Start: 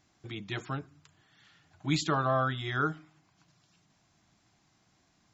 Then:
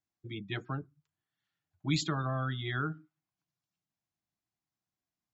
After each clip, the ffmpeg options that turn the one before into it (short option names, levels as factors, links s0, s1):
-filter_complex "[0:a]afftdn=nr=26:nf=-41,acrossover=split=290|1900[s0][s1][s2];[s1]acompressor=threshold=0.0126:ratio=6[s3];[s0][s3][s2]amix=inputs=3:normalize=0"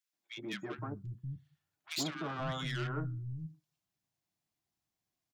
-filter_complex "[0:a]asoftclip=type=tanh:threshold=0.0188,acrossover=split=170|1400[s0][s1][s2];[s1]adelay=130[s3];[s0]adelay=540[s4];[s4][s3][s2]amix=inputs=3:normalize=0,volume=1.58"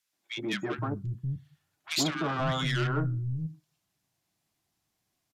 -filter_complex "[0:a]asplit=2[s0][s1];[s1]asoftclip=type=tanh:threshold=0.0119,volume=0.422[s2];[s0][s2]amix=inputs=2:normalize=0,aresample=32000,aresample=44100,volume=2.11"